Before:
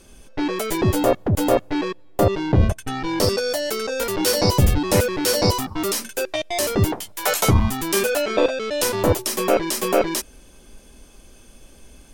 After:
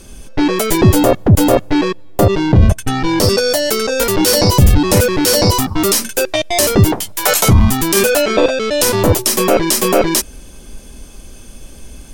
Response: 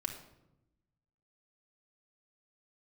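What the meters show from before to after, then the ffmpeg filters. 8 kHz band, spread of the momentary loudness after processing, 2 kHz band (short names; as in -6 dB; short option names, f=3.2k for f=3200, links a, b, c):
+9.5 dB, 6 LU, +7.0 dB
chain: -af "bass=f=250:g=5,treble=f=4k:g=3,alimiter=limit=-9dB:level=0:latency=1:release=22,volume=8dB"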